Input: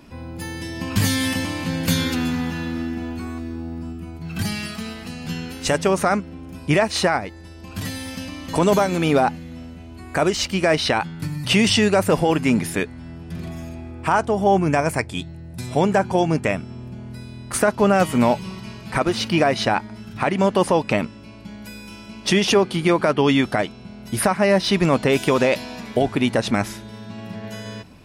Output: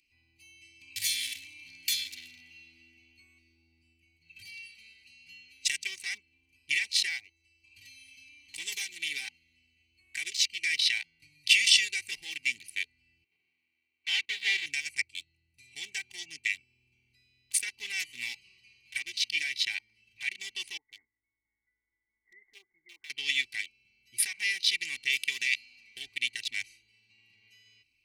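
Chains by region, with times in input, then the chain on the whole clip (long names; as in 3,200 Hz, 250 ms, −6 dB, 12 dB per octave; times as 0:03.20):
0:13.24–0:14.66: each half-wave held at its own peak + band-pass filter 220–2,400 Hz + noise gate −28 dBFS, range −16 dB
0:20.77–0:23.10: linear-phase brick-wall low-pass 2,200 Hz + parametric band 160 Hz −13 dB 1.9 octaves + tuned comb filter 880 Hz, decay 0.25 s
whole clip: adaptive Wiener filter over 25 samples; elliptic high-pass filter 2,100 Hz, stop band 40 dB; comb filter 2.6 ms, depth 72%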